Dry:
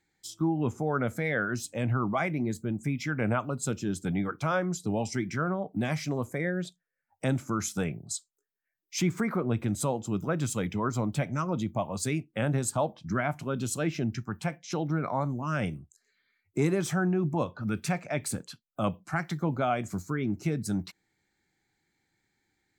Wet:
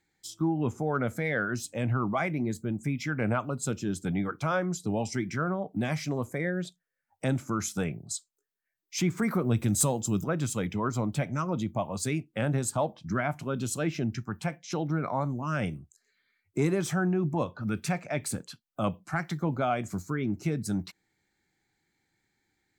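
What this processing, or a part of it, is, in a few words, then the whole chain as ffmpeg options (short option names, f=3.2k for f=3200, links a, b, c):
saturation between pre-emphasis and de-emphasis: -filter_complex "[0:a]asettb=1/sr,asplit=3[a][b][c];[a]atrim=end=9.224[d];[b]atrim=start=9.22:end=10.24,asetpts=PTS-STARTPTS,afade=t=in:d=0.004:c=qsin,afade=t=out:st=1.016:d=0.004:c=qsin,bass=f=250:g=4,treble=f=4k:g=13[e];[c]atrim=start=10.236[f];[d][e]acrossfade=d=0.004:c1=hsin:c2=qsin[g];[g][f]acrossfade=d=0.004:c1=qsin:c2=hsin,highshelf=f=2.1k:g=8.5,asoftclip=type=tanh:threshold=-8.5dB,highshelf=f=2.1k:g=-8.5"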